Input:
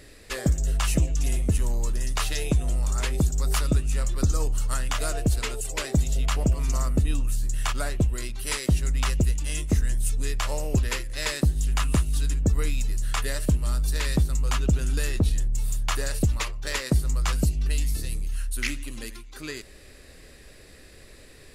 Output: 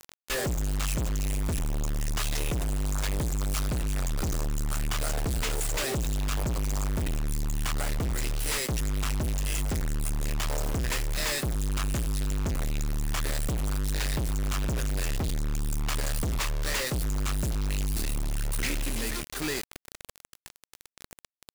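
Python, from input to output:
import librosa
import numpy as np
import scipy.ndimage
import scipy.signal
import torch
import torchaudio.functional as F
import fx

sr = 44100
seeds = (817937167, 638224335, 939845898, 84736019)

y = fx.quant_companded(x, sr, bits=2)
y = y * 10.0 ** (-2.0 / 20.0)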